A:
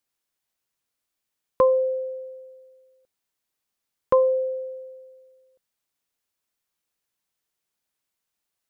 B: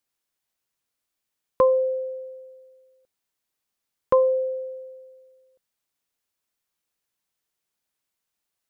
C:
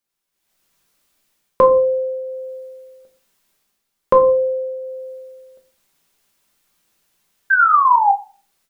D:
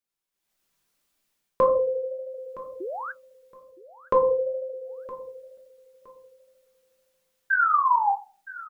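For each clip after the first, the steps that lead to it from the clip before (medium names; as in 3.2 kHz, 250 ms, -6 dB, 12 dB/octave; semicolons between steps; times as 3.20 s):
no audible change
painted sound fall, 7.50–8.12 s, 780–1600 Hz -28 dBFS; reverberation RT60 0.40 s, pre-delay 5 ms, DRR 3.5 dB; level rider gain up to 16.5 dB; trim -1 dB
painted sound rise, 2.80–3.12 s, 330–1700 Hz -25 dBFS; flange 1.7 Hz, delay 2.4 ms, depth 7.2 ms, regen -68%; feedback delay 966 ms, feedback 25%, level -17.5 dB; trim -4 dB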